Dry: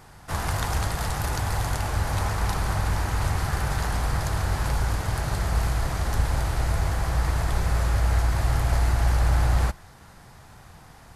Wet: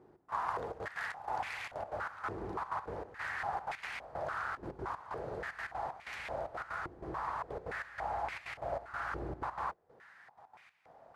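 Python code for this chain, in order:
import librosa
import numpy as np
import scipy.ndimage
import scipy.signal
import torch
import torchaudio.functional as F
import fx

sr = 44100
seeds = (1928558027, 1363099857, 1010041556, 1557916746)

y = fx.step_gate(x, sr, bpm=188, pattern='xx..xxxxx.x.', floor_db=-12.0, edge_ms=4.5)
y = fx.filter_held_bandpass(y, sr, hz=3.5, low_hz=360.0, high_hz=2300.0)
y = y * 10.0 ** (2.5 / 20.0)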